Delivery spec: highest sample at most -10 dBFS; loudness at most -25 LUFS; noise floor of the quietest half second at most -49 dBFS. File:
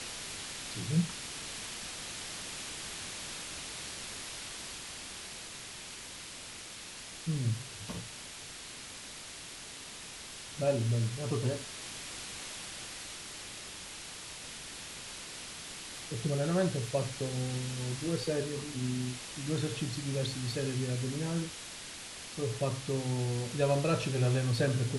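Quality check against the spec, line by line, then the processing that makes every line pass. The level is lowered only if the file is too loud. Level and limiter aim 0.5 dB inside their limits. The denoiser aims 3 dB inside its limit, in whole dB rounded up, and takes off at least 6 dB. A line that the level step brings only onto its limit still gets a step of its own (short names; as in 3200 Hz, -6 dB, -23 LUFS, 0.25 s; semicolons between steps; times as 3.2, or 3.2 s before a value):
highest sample -16.0 dBFS: OK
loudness -36.0 LUFS: OK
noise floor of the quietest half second -46 dBFS: fail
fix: denoiser 6 dB, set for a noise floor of -46 dBFS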